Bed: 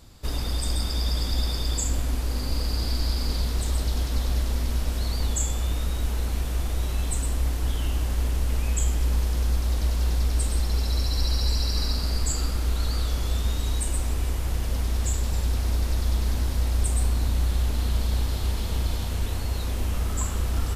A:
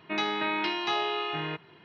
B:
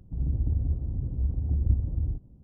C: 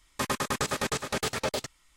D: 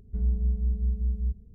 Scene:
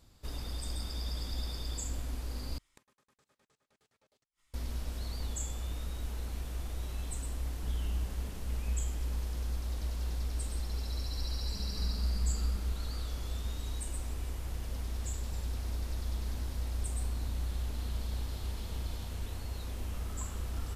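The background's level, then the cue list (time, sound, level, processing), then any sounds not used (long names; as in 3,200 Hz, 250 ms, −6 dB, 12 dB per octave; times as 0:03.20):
bed −11.5 dB
0:02.58: overwrite with C −10 dB + gate with flip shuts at −36 dBFS, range −34 dB
0:07.49: mix in D −5.5 dB + downward compressor, threshold −32 dBFS
0:11.40: mix in D −5 dB + downward compressor 1.5 to 1, threshold −32 dBFS
not used: A, B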